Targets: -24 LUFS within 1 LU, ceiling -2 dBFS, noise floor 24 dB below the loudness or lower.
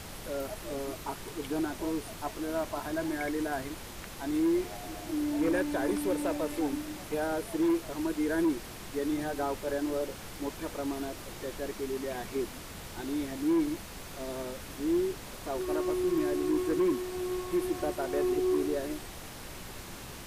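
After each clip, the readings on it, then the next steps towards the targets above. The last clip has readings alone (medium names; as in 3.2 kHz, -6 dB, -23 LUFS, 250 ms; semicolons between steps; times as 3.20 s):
clipped samples 0.9%; clipping level -22.5 dBFS; noise floor -44 dBFS; noise floor target -57 dBFS; loudness -32.5 LUFS; peak level -22.5 dBFS; loudness target -24.0 LUFS
-> clip repair -22.5 dBFS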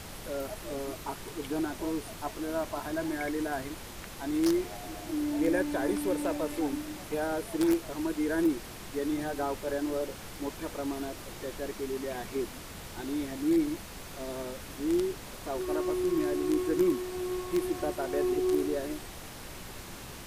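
clipped samples 0.0%; noise floor -44 dBFS; noise floor target -56 dBFS
-> noise print and reduce 12 dB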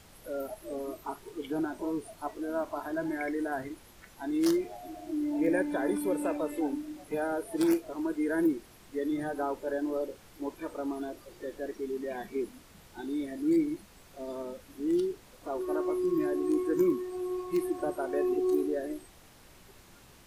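noise floor -56 dBFS; noise floor target -57 dBFS
-> noise print and reduce 6 dB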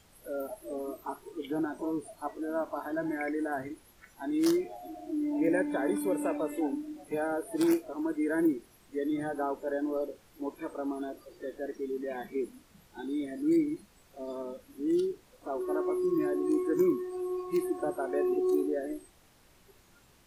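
noise floor -62 dBFS; loudness -32.5 LUFS; peak level -14.0 dBFS; loudness target -24.0 LUFS
-> trim +8.5 dB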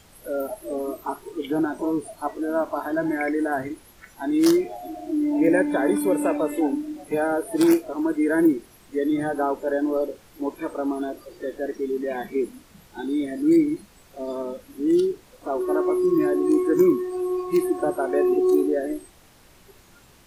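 loudness -24.0 LUFS; peak level -5.5 dBFS; noise floor -53 dBFS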